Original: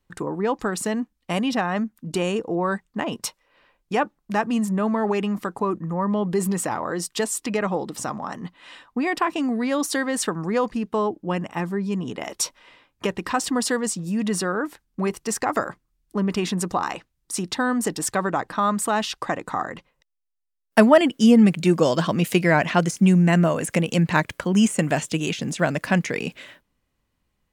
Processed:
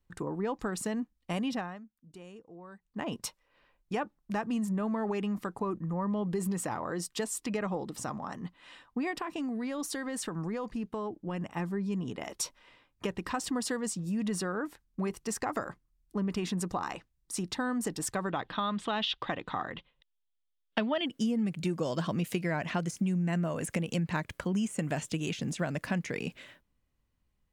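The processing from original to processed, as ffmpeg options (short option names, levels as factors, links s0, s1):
-filter_complex "[0:a]asettb=1/sr,asplit=3[s0][s1][s2];[s0]atrim=end=9.114[s3];[s1]atrim=start=9.11:end=11.52,asetpts=PTS-STARTPTS,afade=t=in:d=0.004:c=qsin,afade=t=out:st=2.406:d=0.004:c=qsin,acompressor=threshold=0.0631:ratio=4:attack=3.2:release=140:knee=1:detection=peak[s4];[s2]atrim=start=11.516[s5];[s3][s4]acrossfade=d=0.004:c1=hsin:c2=qsin[s6];[s6][s5]acrossfade=d=0.004:c1=qsin:c2=hsin,asettb=1/sr,asplit=3[s7][s8][s9];[s7]atrim=end=18.304[s10];[s8]atrim=start=18.3:end=21.06,asetpts=PTS-STARTPTS,afade=t=in:d=0.004:c=qsin,afade=t=out:st=2.756:d=0.004:c=qsin,lowpass=f=3400:t=q:w=5.4[s11];[s9]atrim=start=21.056[s12];[s10][s11]acrossfade=d=0.004:c1=hsin:c2=qsin[s13];[s13][s12]acrossfade=d=0.004:c1=qsin:c2=hsin,asplit=3[s14][s15][s16];[s14]atrim=end=1.79,asetpts=PTS-STARTPTS,afade=t=out:st=1.48:d=0.31:silence=0.125893[s17];[s15]atrim=start=1.79:end=2.78,asetpts=PTS-STARTPTS,volume=0.126[s18];[s16]atrim=start=2.78,asetpts=PTS-STARTPTS,afade=t=in:d=0.31:silence=0.125893[s19];[s17][s18][s19]concat=n=3:v=0:a=1,lowshelf=f=140:g=8,acompressor=threshold=0.112:ratio=6,volume=0.376"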